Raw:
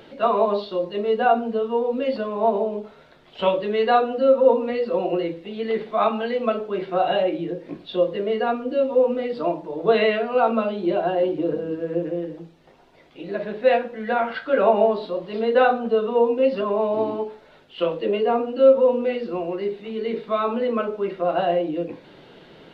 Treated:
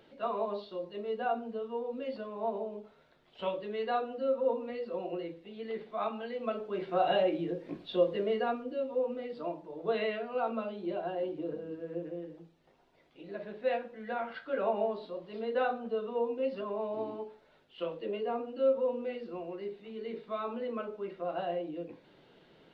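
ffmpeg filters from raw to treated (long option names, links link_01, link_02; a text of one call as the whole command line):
ffmpeg -i in.wav -af "volume=-6.5dB,afade=type=in:start_time=6.34:duration=0.77:silence=0.421697,afade=type=out:start_time=8.22:duration=0.54:silence=0.446684" out.wav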